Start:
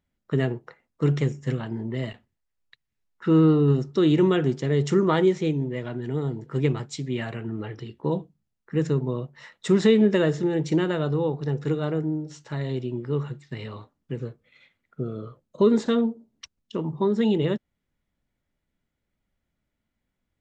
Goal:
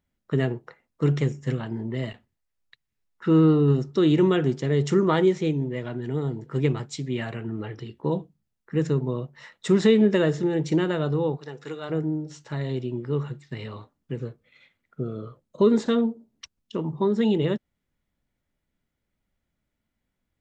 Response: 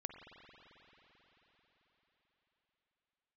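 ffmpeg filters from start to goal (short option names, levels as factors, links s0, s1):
-filter_complex "[0:a]asplit=3[s0][s1][s2];[s0]afade=t=out:st=11.36:d=0.02[s3];[s1]highpass=f=980:p=1,afade=t=in:st=11.36:d=0.02,afade=t=out:st=11.89:d=0.02[s4];[s2]afade=t=in:st=11.89:d=0.02[s5];[s3][s4][s5]amix=inputs=3:normalize=0"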